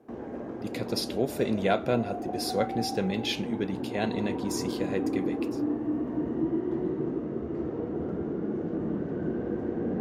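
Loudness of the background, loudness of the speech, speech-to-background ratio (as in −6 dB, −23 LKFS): −32.5 LKFS, −31.0 LKFS, 1.5 dB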